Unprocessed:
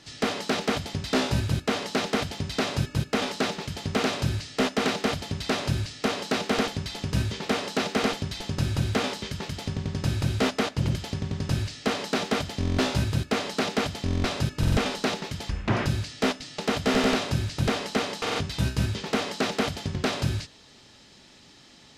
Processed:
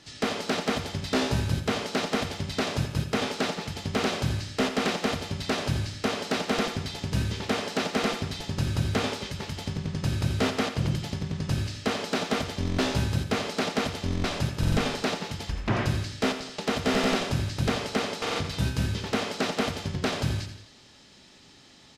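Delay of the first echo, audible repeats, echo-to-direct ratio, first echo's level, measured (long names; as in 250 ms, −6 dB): 85 ms, 3, −8.5 dB, −10.0 dB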